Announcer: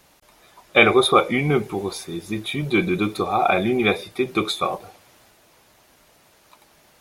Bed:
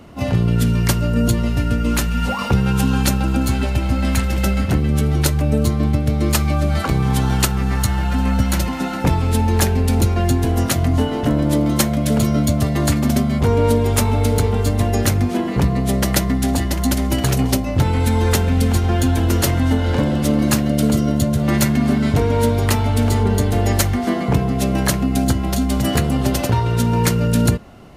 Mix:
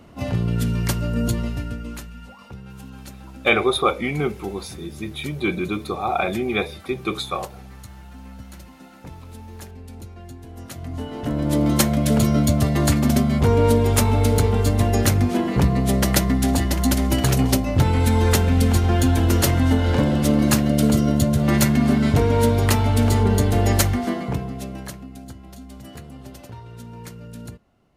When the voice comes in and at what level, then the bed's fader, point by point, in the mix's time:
2.70 s, -3.5 dB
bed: 1.40 s -5.5 dB
2.32 s -22.5 dB
10.46 s -22.5 dB
11.66 s -1 dB
23.85 s -1 dB
25.19 s -21.5 dB

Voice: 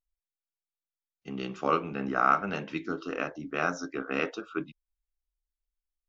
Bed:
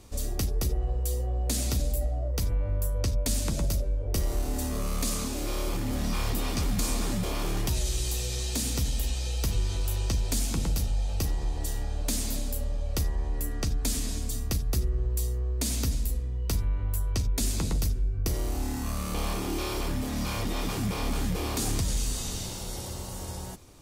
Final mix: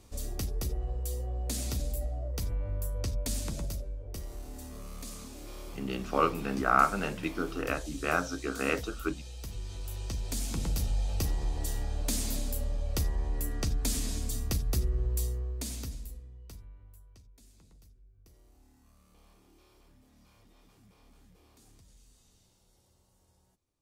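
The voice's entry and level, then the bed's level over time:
4.50 s, 0.0 dB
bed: 3.37 s -5.5 dB
4.30 s -13.5 dB
9.41 s -13.5 dB
10.91 s -2 dB
15.21 s -2 dB
17.37 s -31.5 dB

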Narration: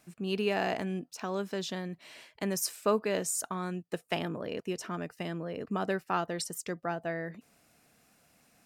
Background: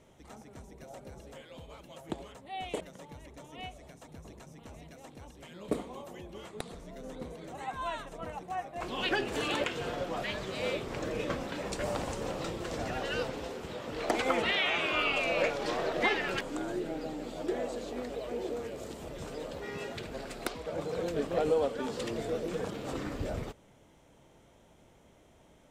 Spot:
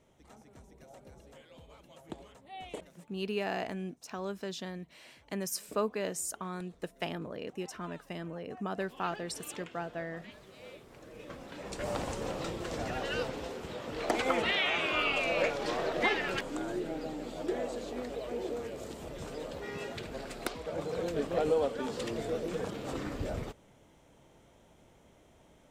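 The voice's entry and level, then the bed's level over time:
2.90 s, -4.0 dB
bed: 2.82 s -6 dB
3.13 s -16.5 dB
11.05 s -16.5 dB
11.95 s -0.5 dB

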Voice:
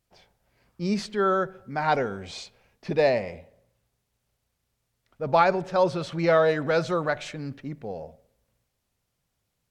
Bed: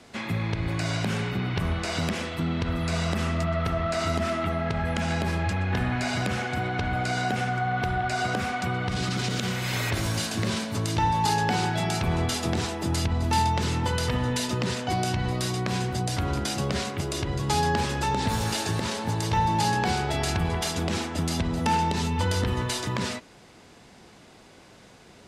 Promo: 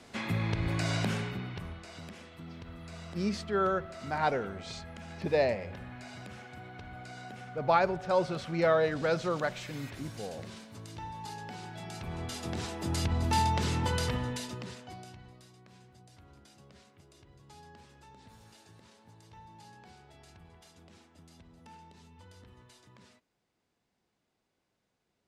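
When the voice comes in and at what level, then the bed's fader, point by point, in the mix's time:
2.35 s, -5.5 dB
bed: 1.05 s -3 dB
1.86 s -18.5 dB
11.61 s -18.5 dB
13.10 s -4 dB
14.02 s -4 dB
15.50 s -29.5 dB

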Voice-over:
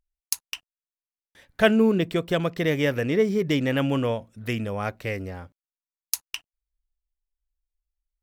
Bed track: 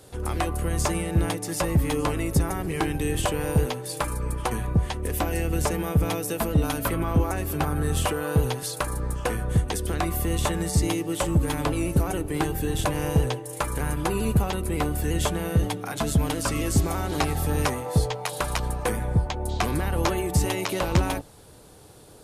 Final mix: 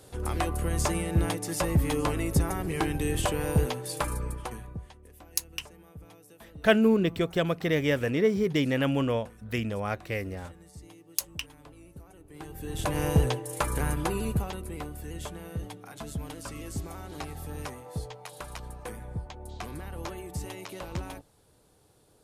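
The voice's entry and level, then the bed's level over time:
5.05 s, -2.5 dB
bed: 4.16 s -2.5 dB
5.11 s -25.5 dB
12.16 s -25.5 dB
12.98 s -1 dB
13.86 s -1 dB
14.94 s -13.5 dB

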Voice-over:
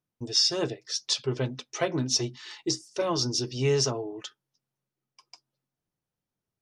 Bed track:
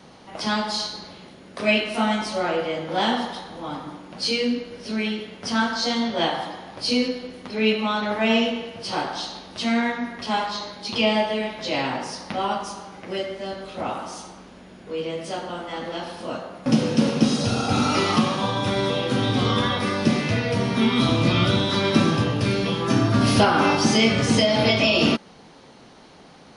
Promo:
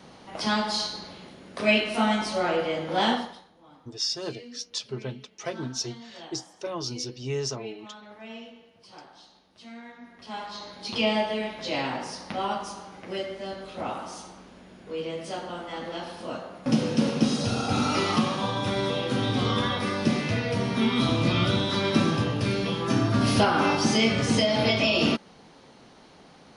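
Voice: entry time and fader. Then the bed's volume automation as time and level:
3.65 s, -5.5 dB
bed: 3.12 s -1.5 dB
3.54 s -22 dB
9.82 s -22 dB
10.84 s -4 dB

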